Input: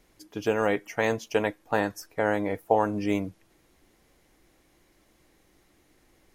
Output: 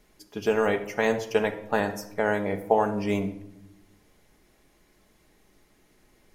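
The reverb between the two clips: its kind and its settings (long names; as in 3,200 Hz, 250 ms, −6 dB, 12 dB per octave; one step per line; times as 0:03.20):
rectangular room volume 2,500 cubic metres, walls furnished, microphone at 1.4 metres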